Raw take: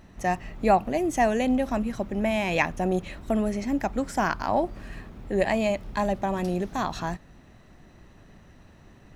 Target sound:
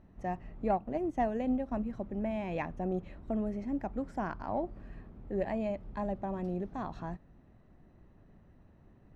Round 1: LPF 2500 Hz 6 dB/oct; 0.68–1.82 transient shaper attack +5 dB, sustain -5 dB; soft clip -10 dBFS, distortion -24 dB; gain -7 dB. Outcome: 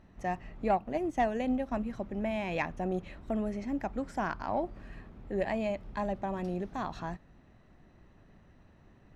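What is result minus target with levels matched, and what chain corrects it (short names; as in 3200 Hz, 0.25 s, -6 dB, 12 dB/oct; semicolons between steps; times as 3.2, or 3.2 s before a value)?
2000 Hz band +5.5 dB
LPF 700 Hz 6 dB/oct; 0.68–1.82 transient shaper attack +5 dB, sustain -5 dB; soft clip -10 dBFS, distortion -29 dB; gain -7 dB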